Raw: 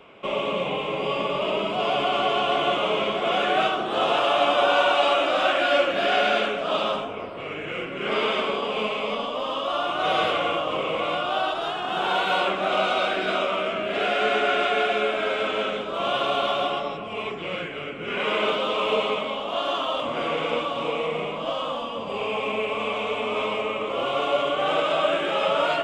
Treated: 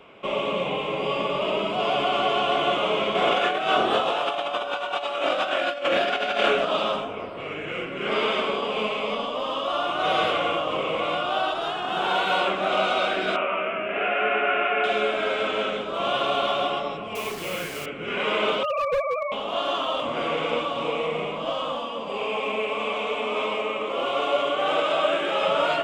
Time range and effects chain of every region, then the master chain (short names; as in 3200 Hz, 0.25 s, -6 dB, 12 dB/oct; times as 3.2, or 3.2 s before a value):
3.15–6.65 notches 50/100/150/200/250/300/350/400 Hz + doubler 26 ms -4 dB + negative-ratio compressor -23 dBFS, ratio -0.5
13.36–14.84 elliptic low-pass 2700 Hz, stop band 50 dB + tilt +1.5 dB/oct
17.15–17.86 notches 60/120/180/240/300 Hz + requantised 6-bit, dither none
18.63–19.32 sine-wave speech + overloaded stage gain 19.5 dB
21.79–25.42 HPF 49 Hz + bell 110 Hz -12.5 dB 0.89 oct
whole clip: dry